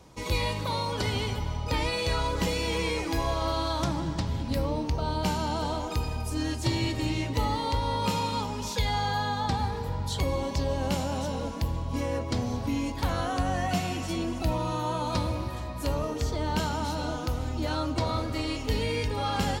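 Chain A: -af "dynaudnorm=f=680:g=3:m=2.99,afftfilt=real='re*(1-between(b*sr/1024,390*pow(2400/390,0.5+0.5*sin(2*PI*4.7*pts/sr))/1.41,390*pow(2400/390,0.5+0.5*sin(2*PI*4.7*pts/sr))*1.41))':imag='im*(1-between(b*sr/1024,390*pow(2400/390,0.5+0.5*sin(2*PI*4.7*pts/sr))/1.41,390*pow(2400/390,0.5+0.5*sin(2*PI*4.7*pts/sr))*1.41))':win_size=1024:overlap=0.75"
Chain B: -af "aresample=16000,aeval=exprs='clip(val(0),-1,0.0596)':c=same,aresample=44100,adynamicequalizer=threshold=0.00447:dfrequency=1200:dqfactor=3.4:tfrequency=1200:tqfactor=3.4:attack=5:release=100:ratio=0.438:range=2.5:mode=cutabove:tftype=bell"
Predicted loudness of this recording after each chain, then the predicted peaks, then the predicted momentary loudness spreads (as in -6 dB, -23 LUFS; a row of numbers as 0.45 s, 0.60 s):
-21.5 LUFS, -30.5 LUFS; -5.5 dBFS, -14.5 dBFS; 4 LU, 3 LU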